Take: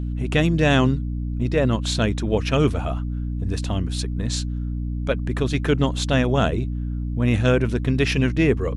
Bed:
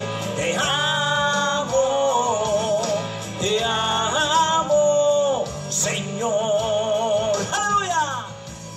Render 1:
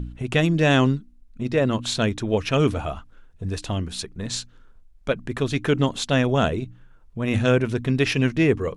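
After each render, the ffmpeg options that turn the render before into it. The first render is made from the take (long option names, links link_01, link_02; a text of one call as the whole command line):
ffmpeg -i in.wav -af "bandreject=frequency=60:width_type=h:width=4,bandreject=frequency=120:width_type=h:width=4,bandreject=frequency=180:width_type=h:width=4,bandreject=frequency=240:width_type=h:width=4,bandreject=frequency=300:width_type=h:width=4" out.wav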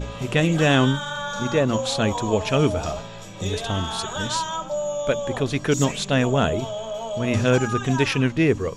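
ffmpeg -i in.wav -i bed.wav -filter_complex "[1:a]volume=-9dB[link_01];[0:a][link_01]amix=inputs=2:normalize=0" out.wav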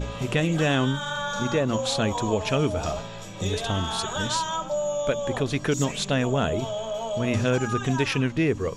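ffmpeg -i in.wav -af "acompressor=threshold=-22dB:ratio=2" out.wav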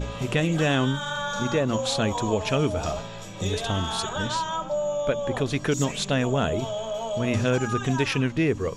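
ffmpeg -i in.wav -filter_complex "[0:a]asettb=1/sr,asplit=3[link_01][link_02][link_03];[link_01]atrim=end=4.094[link_04];[link_02]atrim=start=4.09:end=5.37,asetpts=PTS-STARTPTS,afade=type=in:duration=0.004:curve=qsin,afade=type=out:start_time=1.276:duration=0.004:curve=qsin,aemphasis=mode=reproduction:type=cd[link_05];[link_03]atrim=start=5.366[link_06];[link_04][link_05]acrossfade=duration=0.004:curve1=hsin:curve2=qsin[link_07];[link_07][link_06]acrossfade=duration=0.004:curve1=qsin:curve2=hsin" out.wav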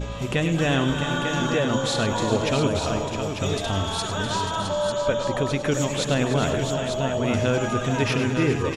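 ffmpeg -i in.wav -af "aecho=1:1:101|298|402|490|663|896:0.316|0.251|0.251|0.112|0.398|0.473" out.wav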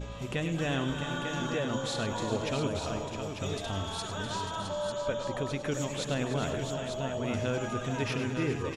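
ffmpeg -i in.wav -af "volume=-9dB" out.wav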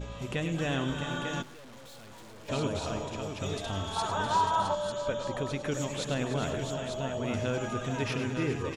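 ffmpeg -i in.wav -filter_complex "[0:a]asplit=3[link_01][link_02][link_03];[link_01]afade=type=out:start_time=1.41:duration=0.02[link_04];[link_02]aeval=exprs='(tanh(282*val(0)+0.7)-tanh(0.7))/282':channel_layout=same,afade=type=in:start_time=1.41:duration=0.02,afade=type=out:start_time=2.48:duration=0.02[link_05];[link_03]afade=type=in:start_time=2.48:duration=0.02[link_06];[link_04][link_05][link_06]amix=inputs=3:normalize=0,asettb=1/sr,asplit=3[link_07][link_08][link_09];[link_07]atrim=end=3.964[link_10];[link_08]atrim=start=3.96:end=4.75,asetpts=PTS-STARTPTS,afade=type=in:duration=0.004:curve=qsin,afade=type=out:start_time=0.786:duration=0.004:curve=qsin,equalizer=frequency=920:width=1.3:gain=12[link_11];[link_09]atrim=start=4.746[link_12];[link_10][link_11]acrossfade=duration=0.004:curve1=hsin:curve2=qsin[link_13];[link_13][link_12]acrossfade=duration=0.004:curve1=qsin:curve2=hsin" out.wav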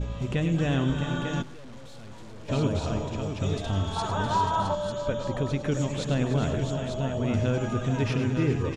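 ffmpeg -i in.wav -af "lowpass=8500,lowshelf=frequency=310:gain=10" out.wav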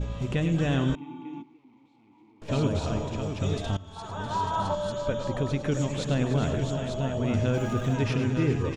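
ffmpeg -i in.wav -filter_complex "[0:a]asettb=1/sr,asplit=3[link_01][link_02][link_03];[link_01]atrim=end=0.954[link_04];[link_02]atrim=start=0.95:end=2.42,asetpts=PTS-STARTPTS,afade=type=in:duration=0.004:curve=qsin,afade=type=out:start_time=1.466:duration=0.004:curve=qsin,asplit=3[link_05][link_06][link_07];[link_05]bandpass=frequency=300:width_type=q:width=8,volume=0dB[link_08];[link_06]bandpass=frequency=870:width_type=q:width=8,volume=-6dB[link_09];[link_07]bandpass=frequency=2240:width_type=q:width=8,volume=-9dB[link_10];[link_08][link_09][link_10]amix=inputs=3:normalize=0[link_11];[link_03]atrim=start=2.416[link_12];[link_04][link_11]acrossfade=duration=0.004:curve1=hsin:curve2=qsin[link_13];[link_13][link_12]acrossfade=duration=0.004:curve1=qsin:curve2=hsin,asettb=1/sr,asplit=3[link_14][link_15][link_16];[link_14]atrim=end=7.544[link_17];[link_15]atrim=start=7.54:end=7.94,asetpts=PTS-STARTPTS,afade=type=in:duration=0.004:curve=qsin,afade=type=out:start_time=0.396:duration=0.004:curve=qsin,aeval=exprs='val(0)+0.5*0.00708*sgn(val(0))':channel_layout=same[link_18];[link_16]atrim=start=7.936[link_19];[link_17][link_18]acrossfade=duration=0.004:curve1=hsin:curve2=qsin[link_20];[link_20][link_19]acrossfade=duration=0.004:curve1=qsin:curve2=hsin,asplit=2[link_21][link_22];[link_21]atrim=end=3.77,asetpts=PTS-STARTPTS,afade=type=out:start_time=3.766:duration=0.004:curve=hsin:silence=0.1[link_23];[link_22]atrim=start=3.77,asetpts=PTS-STARTPTS,afade=type=in:duration=1.04:silence=0.1[link_24];[link_23][link_24]concat=n=2:v=0:a=1" out.wav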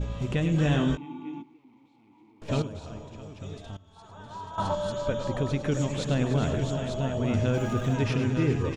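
ffmpeg -i in.wav -filter_complex "[0:a]asettb=1/sr,asplit=3[link_01][link_02][link_03];[link_01]atrim=end=0.534[link_04];[link_02]atrim=start=0.53:end=1.32,asetpts=PTS-STARTPTS,afade=type=in:duration=0.004:curve=qsin,afade=type=out:start_time=0.786:duration=0.004:curve=qsin,asplit=2[link_05][link_06];[link_06]adelay=20,volume=-5dB[link_07];[link_05][link_07]amix=inputs=2:normalize=0,atrim=end_sample=34839[link_08];[link_03]atrim=start=1.316[link_09];[link_04][link_08]acrossfade=duration=0.004:curve1=hsin:curve2=qsin[link_10];[link_10][link_09]acrossfade=duration=0.004:curve1=qsin:curve2=hsin,asplit=3[link_11][link_12][link_13];[link_11]atrim=end=2.622[link_14];[link_12]atrim=start=2.618:end=4.582,asetpts=PTS-STARTPTS,volume=-11.5dB[link_15];[link_13]atrim=start=4.578[link_16];[link_14][link_15]acrossfade=duration=0.004:curve1=hsin:curve2=hsin[link_17];[link_17][link_16]acrossfade=duration=0.004:curve1=hsin:curve2=hsin" out.wav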